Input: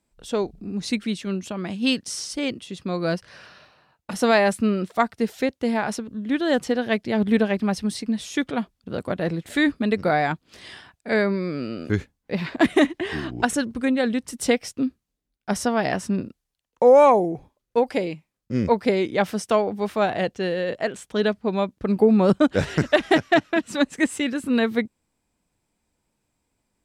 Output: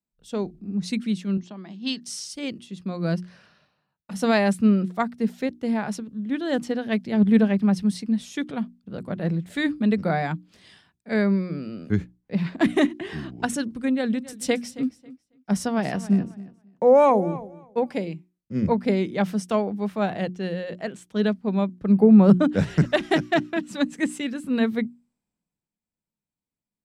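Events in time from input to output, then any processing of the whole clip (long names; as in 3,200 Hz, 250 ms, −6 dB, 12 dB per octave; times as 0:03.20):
0:01.37–0:02.02: loudspeaker in its box 280–6,000 Hz, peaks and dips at 500 Hz −10 dB, 1,400 Hz −6 dB, 2,500 Hz −7 dB
0:13.86–0:17.98: repeating echo 273 ms, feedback 26%, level −15 dB
whole clip: parametric band 180 Hz +10.5 dB 0.91 octaves; mains-hum notches 60/120/180/240/300/360 Hz; multiband upward and downward expander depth 40%; level −5 dB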